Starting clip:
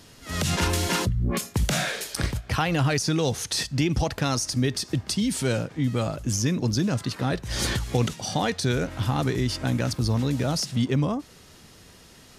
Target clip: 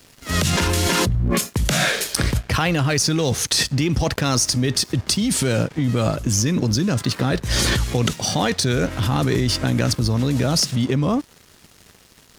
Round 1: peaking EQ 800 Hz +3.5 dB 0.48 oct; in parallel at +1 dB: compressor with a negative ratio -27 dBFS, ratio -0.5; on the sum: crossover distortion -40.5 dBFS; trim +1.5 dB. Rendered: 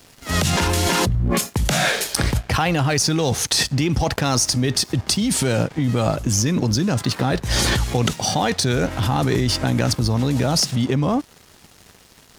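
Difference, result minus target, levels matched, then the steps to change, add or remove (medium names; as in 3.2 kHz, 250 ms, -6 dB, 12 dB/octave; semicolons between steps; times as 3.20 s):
1 kHz band +2.5 dB
change: peaking EQ 800 Hz -3 dB 0.48 oct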